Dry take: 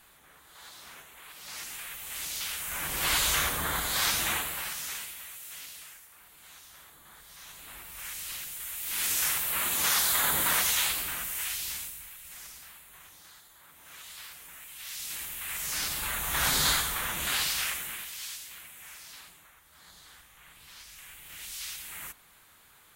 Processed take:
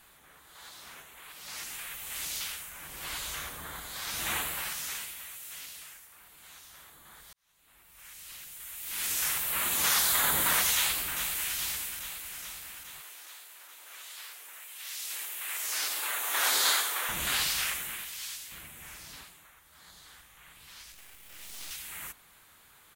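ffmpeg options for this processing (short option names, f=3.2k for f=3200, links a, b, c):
-filter_complex "[0:a]asplit=2[a][b];[b]afade=t=in:st=10.74:d=0.01,afade=t=out:st=11.57:d=0.01,aecho=0:1:420|840|1260|1680|2100|2520|2940|3360|3780|4200|4620:0.375837|0.263086|0.18416|0.128912|0.0902386|0.063167|0.0442169|0.0309518|0.0216663|0.0151664|0.0106165[c];[a][c]amix=inputs=2:normalize=0,asettb=1/sr,asplit=3[d][e][f];[d]atrim=end=13.014[g];[e]atrim=start=13.01:end=17.09,asetpts=PTS-STARTPTS,afade=t=in:d=0.004:c=qsin,afade=t=out:st=4.076:d=0.004:c=qsin,highpass=f=360:w=0.5412,highpass=f=360:w=1.3066[h];[f]atrim=start=17.086[i];[g][h]acrossfade=d=0.004:c1=hsin:c2=qsin[j];[j][i]acrossfade=d=0.004:c1=qsin:c2=hsin,asettb=1/sr,asplit=3[k][l][m];[k]atrim=end=18.524[n];[l]atrim=start=18.52:end=19.24,asetpts=PTS-STARTPTS,afade=t=in:d=0.004:c=qsin,afade=t=out:st=0.716:d=0.004:c=qsin,lowshelf=f=490:g=12[o];[m]atrim=start=19.236[p];[n][o]acrossfade=d=0.004:c1=hsin:c2=qsin[q];[q][p]acrossfade=d=0.004:c1=qsin:c2=hsin,asettb=1/sr,asplit=3[r][s][t];[r]atrim=end=20.924[u];[s]atrim=start=20.92:end=21.71,asetpts=PTS-STARTPTS,afade=t=in:d=0.004:c=qsin,afade=t=out:st=0.786:d=0.004:c=qsin,aeval=exprs='max(val(0),0)':c=same[v];[t]atrim=start=21.706[w];[u][v]acrossfade=d=0.004:c1=hsin:c2=qsin[x];[x][w]acrossfade=d=0.004:c1=qsin:c2=hsin,asplit=4[y][z][aa][ab];[y]atrim=end=2.73,asetpts=PTS-STARTPTS,afade=t=out:st=2.36:d=0.37:silence=0.281838[ac];[z]atrim=start=2.73:end=4.06,asetpts=PTS-STARTPTS,volume=-11dB[ad];[aa]atrim=start=4.06:end=7.33,asetpts=PTS-STARTPTS,afade=t=in:d=0.37:silence=0.281838,afade=t=out:st=3.266:d=0.004:c=hsin[ae];[ab]atrim=start=7.33,asetpts=PTS-STARTPTS,afade=t=in:d=2.43[af];[ac][ad][ae][af]concat=n=4:v=0:a=1"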